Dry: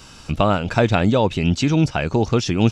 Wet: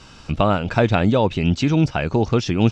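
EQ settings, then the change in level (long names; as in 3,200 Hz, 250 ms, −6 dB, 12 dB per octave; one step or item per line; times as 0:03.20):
high-frequency loss of the air 78 metres
0.0 dB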